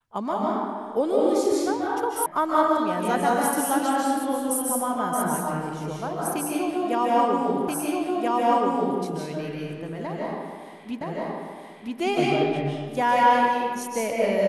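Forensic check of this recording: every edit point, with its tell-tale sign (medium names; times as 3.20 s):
2.26 s: sound stops dead
7.68 s: repeat of the last 1.33 s
11.01 s: repeat of the last 0.97 s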